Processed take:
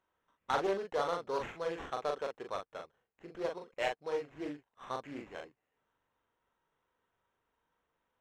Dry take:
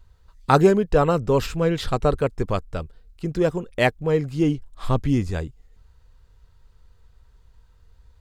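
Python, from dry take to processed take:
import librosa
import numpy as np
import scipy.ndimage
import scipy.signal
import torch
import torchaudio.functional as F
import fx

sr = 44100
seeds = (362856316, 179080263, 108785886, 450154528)

y = scipy.signal.sosfilt(scipy.signal.butter(2, 660.0, 'highpass', fs=sr, output='sos'), x)
y = fx.high_shelf(y, sr, hz=8300.0, db=-6.0)
y = fx.notch(y, sr, hz=3400.0, q=9.6)
y = fx.sample_hold(y, sr, seeds[0], rate_hz=4700.0, jitter_pct=0)
y = 10.0 ** (-13.0 / 20.0) * np.tanh(y / 10.0 ** (-13.0 / 20.0))
y = fx.spacing_loss(y, sr, db_at_10k=21)
y = fx.doubler(y, sr, ms=41.0, db=-4)
y = fx.doppler_dist(y, sr, depth_ms=0.24)
y = y * librosa.db_to_amplitude(-7.5)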